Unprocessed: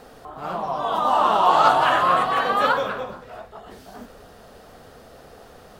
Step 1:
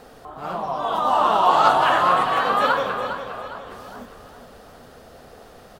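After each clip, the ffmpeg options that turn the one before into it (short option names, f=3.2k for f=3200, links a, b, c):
-af "aecho=1:1:407|814|1221|1628|2035:0.316|0.139|0.0612|0.0269|0.0119"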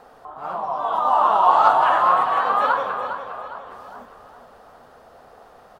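-af "equalizer=f=950:t=o:w=1.8:g=12.5,volume=-10dB"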